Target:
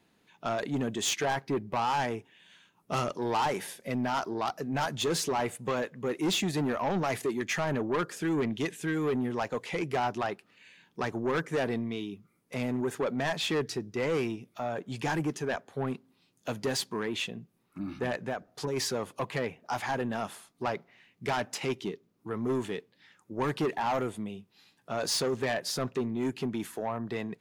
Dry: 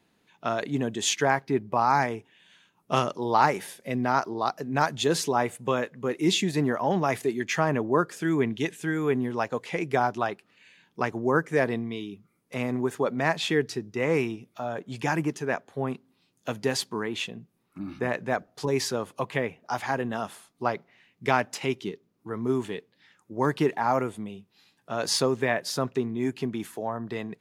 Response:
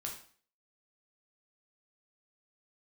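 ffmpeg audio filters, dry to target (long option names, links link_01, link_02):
-filter_complex "[0:a]asplit=3[link_01][link_02][link_03];[link_01]afade=type=out:start_time=18.15:duration=0.02[link_04];[link_02]acompressor=threshold=-27dB:ratio=6,afade=type=in:start_time=18.15:duration=0.02,afade=type=out:start_time=18.76:duration=0.02[link_05];[link_03]afade=type=in:start_time=18.76:duration=0.02[link_06];[link_04][link_05][link_06]amix=inputs=3:normalize=0,asoftclip=type=tanh:threshold=-24dB"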